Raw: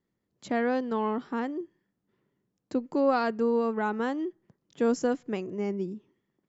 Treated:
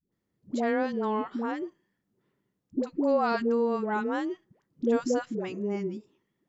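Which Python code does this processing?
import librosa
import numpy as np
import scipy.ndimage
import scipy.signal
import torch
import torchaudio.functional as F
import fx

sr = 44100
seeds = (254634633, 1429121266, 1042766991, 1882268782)

y = fx.dispersion(x, sr, late='highs', ms=122.0, hz=500.0)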